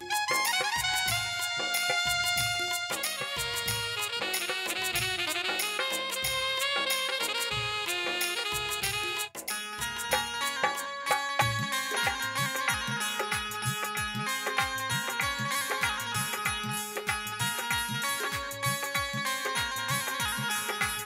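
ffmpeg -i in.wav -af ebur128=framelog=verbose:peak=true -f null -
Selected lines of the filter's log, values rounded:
Integrated loudness:
  I:         -29.0 LUFS
  Threshold: -39.0 LUFS
Loudness range:
  LRA:         2.0 LU
  Threshold: -49.2 LUFS
  LRA low:   -30.0 LUFS
  LRA high:  -28.0 LUFS
True peak:
  Peak:      -13.3 dBFS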